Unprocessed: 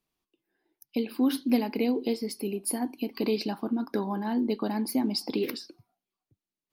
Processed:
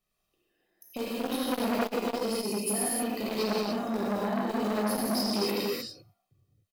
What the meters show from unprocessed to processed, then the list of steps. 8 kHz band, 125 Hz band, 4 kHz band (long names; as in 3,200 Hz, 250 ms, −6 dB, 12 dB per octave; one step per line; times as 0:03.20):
+4.5 dB, can't be measured, +3.0 dB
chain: comb filter 1.6 ms, depth 60%
in parallel at −11 dB: wrap-around overflow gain 21.5 dB
on the sum: reverb whose tail is shaped and stops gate 330 ms flat, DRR −7.5 dB
saturating transformer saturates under 1,200 Hz
level −5.5 dB